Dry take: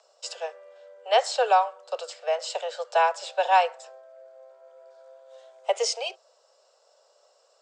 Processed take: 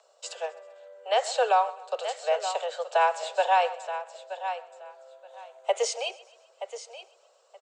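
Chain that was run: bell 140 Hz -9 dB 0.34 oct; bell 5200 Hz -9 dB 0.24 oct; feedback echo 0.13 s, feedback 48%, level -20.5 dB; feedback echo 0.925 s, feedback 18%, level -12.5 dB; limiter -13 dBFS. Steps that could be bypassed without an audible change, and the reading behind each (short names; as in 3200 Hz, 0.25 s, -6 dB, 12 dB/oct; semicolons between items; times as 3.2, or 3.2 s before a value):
bell 140 Hz: input band starts at 360 Hz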